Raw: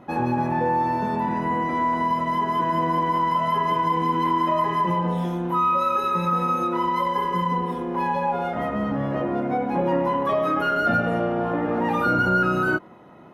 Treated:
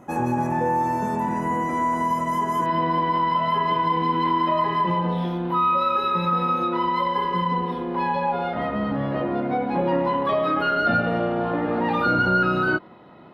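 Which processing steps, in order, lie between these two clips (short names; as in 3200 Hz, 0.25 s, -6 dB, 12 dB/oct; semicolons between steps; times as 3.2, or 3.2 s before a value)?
resonant high shelf 5400 Hz +8 dB, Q 3, from 2.66 s -8.5 dB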